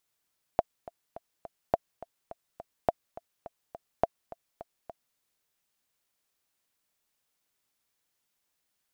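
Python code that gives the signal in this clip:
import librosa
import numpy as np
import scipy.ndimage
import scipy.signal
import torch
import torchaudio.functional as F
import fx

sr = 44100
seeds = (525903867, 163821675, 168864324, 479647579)

y = fx.click_track(sr, bpm=209, beats=4, bars=4, hz=677.0, accent_db=19.0, level_db=-9.0)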